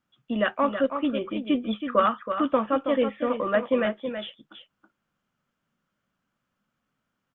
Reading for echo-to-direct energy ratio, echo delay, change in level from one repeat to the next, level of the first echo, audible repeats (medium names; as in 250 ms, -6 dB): -8.5 dB, 324 ms, no regular repeats, -8.5 dB, 1